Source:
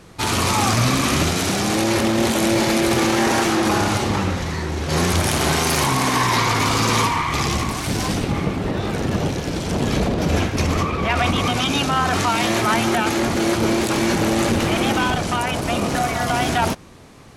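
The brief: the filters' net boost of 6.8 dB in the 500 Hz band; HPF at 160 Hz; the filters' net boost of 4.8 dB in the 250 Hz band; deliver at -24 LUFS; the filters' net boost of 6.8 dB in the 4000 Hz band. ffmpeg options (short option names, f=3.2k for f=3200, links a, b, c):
-af "highpass=160,equalizer=f=250:t=o:g=4.5,equalizer=f=500:t=o:g=7.5,equalizer=f=4k:t=o:g=8.5,volume=-8.5dB"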